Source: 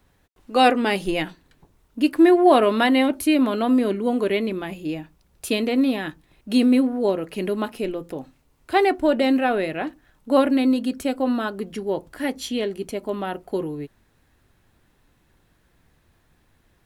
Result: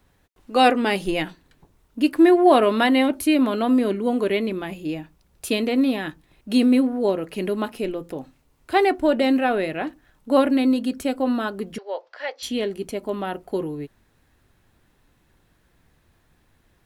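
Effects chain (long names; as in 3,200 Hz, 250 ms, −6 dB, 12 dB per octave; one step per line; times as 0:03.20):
0:11.78–0:12.43: elliptic band-pass filter 530–5,200 Hz, stop band 40 dB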